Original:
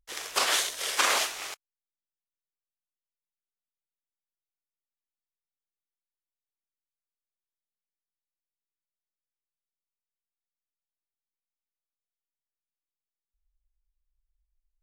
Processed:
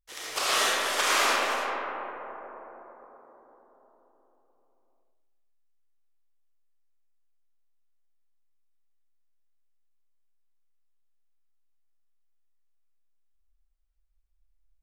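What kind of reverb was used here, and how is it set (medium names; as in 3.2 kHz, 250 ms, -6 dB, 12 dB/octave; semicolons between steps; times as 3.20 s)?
algorithmic reverb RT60 4.7 s, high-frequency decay 0.25×, pre-delay 30 ms, DRR -8.5 dB; trim -5 dB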